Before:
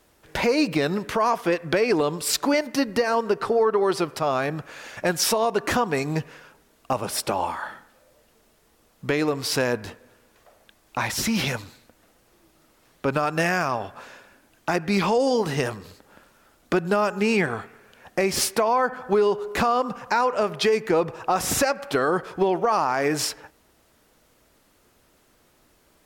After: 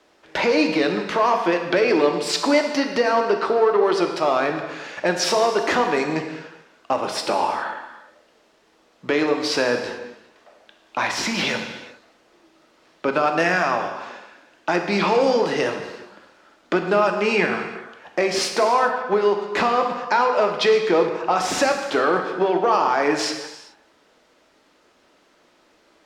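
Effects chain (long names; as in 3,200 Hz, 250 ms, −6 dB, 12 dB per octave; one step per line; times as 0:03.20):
in parallel at −6 dB: hard clipping −20.5 dBFS, distortion −10 dB
on the sum: three-way crossover with the lows and the highs turned down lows −17 dB, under 220 Hz, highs −22 dB, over 6,400 Hz
reverb whose tail is shaped and stops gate 450 ms falling, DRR 4 dB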